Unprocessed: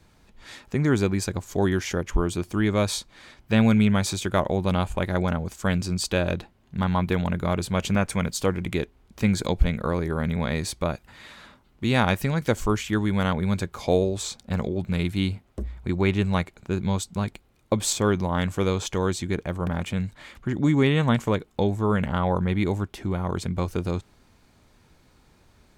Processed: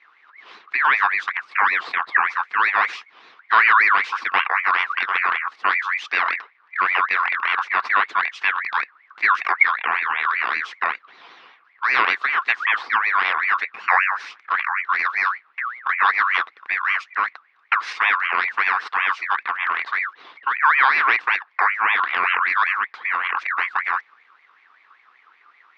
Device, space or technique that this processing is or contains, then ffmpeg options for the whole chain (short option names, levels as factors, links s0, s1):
voice changer toy: -af "aeval=exprs='val(0)*sin(2*PI*1700*n/s+1700*0.3/5.2*sin(2*PI*5.2*n/s))':c=same,highpass=510,equalizer=f=590:t=q:w=4:g=-9,equalizer=f=1100:t=q:w=4:g=6,equalizer=f=3100:t=q:w=4:g=-4,lowpass=f=3600:w=0.5412,lowpass=f=3600:w=1.3066,volume=1.88"